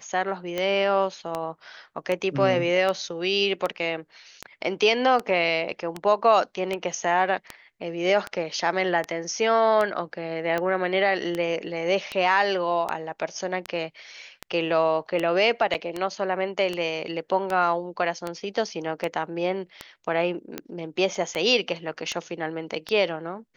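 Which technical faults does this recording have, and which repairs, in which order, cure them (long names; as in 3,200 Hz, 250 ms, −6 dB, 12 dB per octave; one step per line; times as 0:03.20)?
scratch tick 78 rpm −14 dBFS
0:15.74–0:15.75: drop-out 7.6 ms
0:21.15: drop-out 3.4 ms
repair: click removal
repair the gap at 0:15.74, 7.6 ms
repair the gap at 0:21.15, 3.4 ms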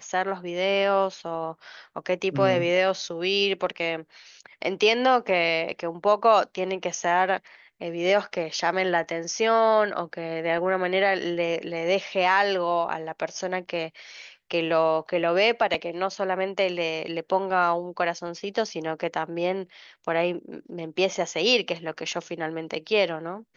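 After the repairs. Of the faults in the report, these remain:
none of them is left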